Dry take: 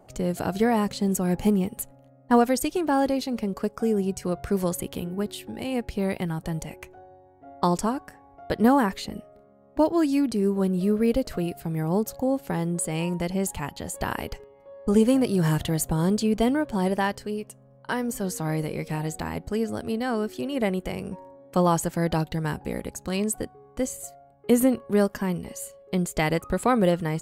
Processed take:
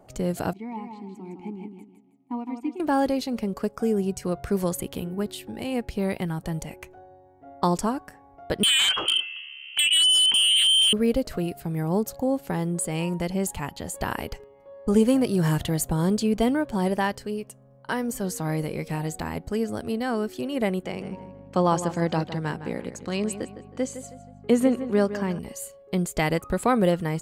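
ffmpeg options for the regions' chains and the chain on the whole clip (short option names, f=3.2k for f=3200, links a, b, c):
-filter_complex "[0:a]asettb=1/sr,asplit=3[a][b][c];[a]atrim=end=0.534[d];[b]atrim=start=0.53:end=2.8,asetpts=PTS-STARTPTS,afade=t=in:d=0.004:c=qsin,afade=t=out:st=2.266:d=0.004:c=qsin,asplit=3[e][f][g];[e]bandpass=f=300:t=q:w=8,volume=0dB[h];[f]bandpass=f=870:t=q:w=8,volume=-6dB[i];[g]bandpass=f=2.24k:t=q:w=8,volume=-9dB[j];[h][i][j]amix=inputs=3:normalize=0,aecho=1:1:160|320|480|640:0.501|0.16|0.0513|0.0164,atrim=end_sample=100107[k];[c]atrim=start=2.796[l];[d][k]acrossfade=d=0.004:c1=hsin:c2=qsin[m];[m][l]acrossfade=d=0.004:c1=qsin:c2=hsin,asettb=1/sr,asplit=3[n][o][p];[n]atrim=end=8.634[q];[o]atrim=start=8.63:end=10.93,asetpts=PTS-STARTPTS,afade=t=in:d=0.004:c=qsin,afade=t=out:st=2.296:d=0.004:c=qsin,lowpass=f=2.8k:t=q:w=0.5098,lowpass=f=2.8k:t=q:w=0.6013,lowpass=f=2.8k:t=q:w=0.9,lowpass=f=2.8k:t=q:w=2.563,afreqshift=-3300,acompressor=threshold=-25dB:ratio=8:attack=3.2:release=140:knee=1:detection=peak,aeval=exprs='0.15*sin(PI/2*3.55*val(0)/0.15)':c=same[r];[p]atrim=start=10.926[s];[q][r]acrossfade=d=0.004:c1=hsin:c2=qsin[t];[t][s]acrossfade=d=0.004:c1=qsin:c2=hsin,asettb=1/sr,asplit=3[u][v][w];[u]atrim=end=20.834[x];[v]atrim=start=20.83:end=25.39,asetpts=PTS-STARTPTS,afade=t=in:d=0.004:c=qsin,afade=t=out:st=4.556:d=0.004:c=qsin,aeval=exprs='val(0)+0.0112*(sin(2*PI*50*n/s)+sin(2*PI*2*50*n/s)/2+sin(2*PI*3*50*n/s)/3+sin(2*PI*4*50*n/s)/4+sin(2*PI*5*50*n/s)/5)':c=same,highpass=150,lowpass=6.6k,asplit=2[y][z];[z]adelay=159,lowpass=f=3.9k:p=1,volume=-11.5dB,asplit=2[aa][ab];[ab]adelay=159,lowpass=f=3.9k:p=1,volume=0.36,asplit=2[ac][ad];[ad]adelay=159,lowpass=f=3.9k:p=1,volume=0.36,asplit=2[ae][af];[af]adelay=159,lowpass=f=3.9k:p=1,volume=0.36[ag];[y][aa][ac][ae][ag]amix=inputs=5:normalize=0,atrim=end_sample=201096[ah];[w]atrim=start=25.386[ai];[x][ah]acrossfade=d=0.004:c1=hsin:c2=qsin[aj];[aj][ai]acrossfade=d=0.004:c1=qsin:c2=hsin"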